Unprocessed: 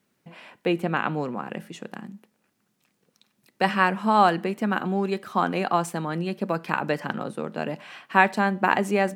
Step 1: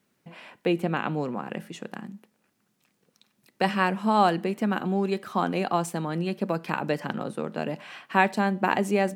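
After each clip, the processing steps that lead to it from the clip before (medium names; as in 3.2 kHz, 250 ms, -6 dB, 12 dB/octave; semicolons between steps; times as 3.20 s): dynamic bell 1.4 kHz, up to -5 dB, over -34 dBFS, Q 0.84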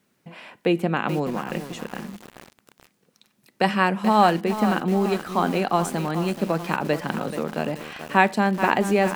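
bit-crushed delay 431 ms, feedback 55%, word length 6-bit, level -10 dB; trim +3.5 dB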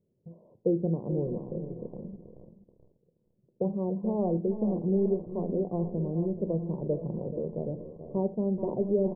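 Gaussian low-pass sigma 18 samples; delay 478 ms -14 dB; reverberation RT60 0.35 s, pre-delay 3 ms, DRR 14 dB; trim -1.5 dB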